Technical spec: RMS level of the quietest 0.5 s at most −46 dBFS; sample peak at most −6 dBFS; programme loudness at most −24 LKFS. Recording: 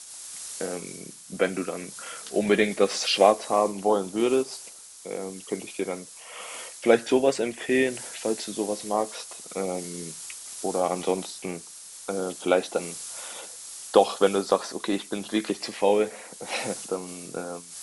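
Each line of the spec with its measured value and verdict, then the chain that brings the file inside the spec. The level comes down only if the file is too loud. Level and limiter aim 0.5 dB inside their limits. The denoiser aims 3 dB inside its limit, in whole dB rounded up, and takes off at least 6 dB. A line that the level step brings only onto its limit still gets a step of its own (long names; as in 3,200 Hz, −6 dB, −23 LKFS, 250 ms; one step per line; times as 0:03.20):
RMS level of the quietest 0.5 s −44 dBFS: out of spec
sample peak −4.0 dBFS: out of spec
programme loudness −27.0 LKFS: in spec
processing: broadband denoise 6 dB, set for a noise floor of −44 dBFS
brickwall limiter −6.5 dBFS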